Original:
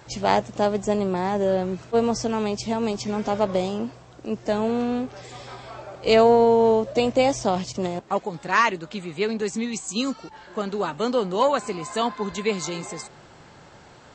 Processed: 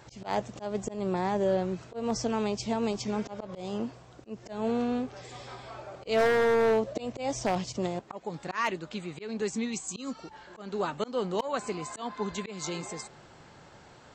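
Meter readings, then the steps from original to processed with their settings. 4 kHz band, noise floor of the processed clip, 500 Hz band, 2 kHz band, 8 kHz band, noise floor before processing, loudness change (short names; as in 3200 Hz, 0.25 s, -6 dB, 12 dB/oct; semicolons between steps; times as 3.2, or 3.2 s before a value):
-8.5 dB, -53 dBFS, -8.0 dB, -6.5 dB, -5.0 dB, -48 dBFS, -8.0 dB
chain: auto swell 0.203 s; wavefolder -13 dBFS; gain -4.5 dB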